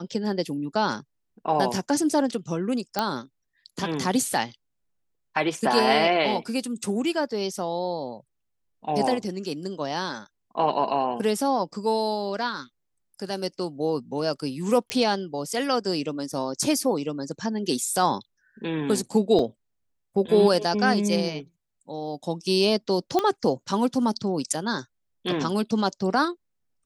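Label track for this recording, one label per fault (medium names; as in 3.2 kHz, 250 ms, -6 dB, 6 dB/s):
2.990000	2.990000	pop -9 dBFS
14.900000	14.900000	pop -10 dBFS
19.390000	19.390000	dropout 2.4 ms
23.190000	23.190000	pop -10 dBFS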